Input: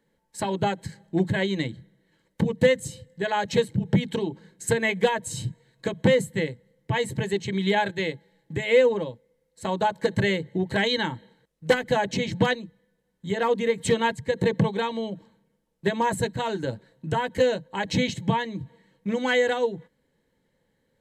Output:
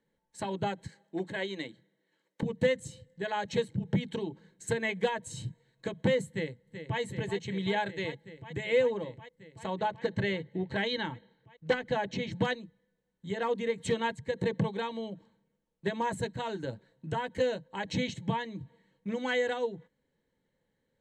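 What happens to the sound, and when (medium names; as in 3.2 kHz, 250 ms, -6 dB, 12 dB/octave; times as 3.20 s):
0.88–2.43 s: high-pass 300 Hz
6.29–7.00 s: echo throw 380 ms, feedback 85%, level -9.5 dB
9.66–12.31 s: low-pass 5.4 kHz
whole clip: low-pass 8.3 kHz 12 dB/octave; band-stop 5 kHz, Q 11; trim -7.5 dB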